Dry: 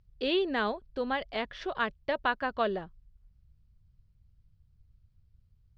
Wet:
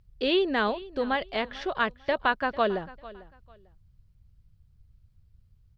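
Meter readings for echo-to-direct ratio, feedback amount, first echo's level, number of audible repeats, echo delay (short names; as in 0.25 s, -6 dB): -19.0 dB, 24%, -19.0 dB, 2, 0.447 s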